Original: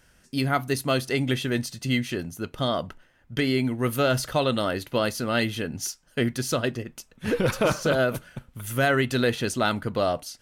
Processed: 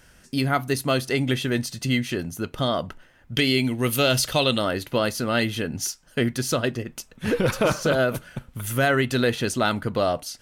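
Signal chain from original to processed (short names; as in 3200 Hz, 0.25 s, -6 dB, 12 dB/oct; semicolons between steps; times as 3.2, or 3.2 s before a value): 3.34–4.58 resonant high shelf 2100 Hz +6 dB, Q 1.5; in parallel at -0.5 dB: compressor, threshold -35 dBFS, peak gain reduction 16.5 dB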